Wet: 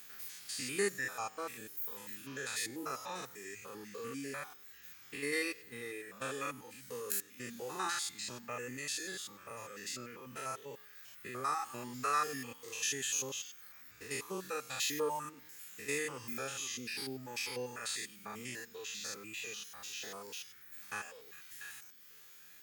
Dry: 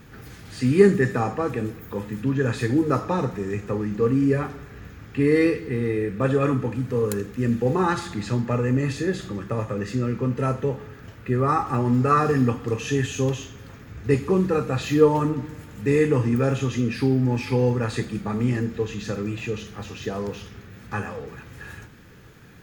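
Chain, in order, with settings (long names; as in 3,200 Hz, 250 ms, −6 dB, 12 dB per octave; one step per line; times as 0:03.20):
spectrum averaged block by block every 100 ms
first difference
reverb reduction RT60 1 s
level +7 dB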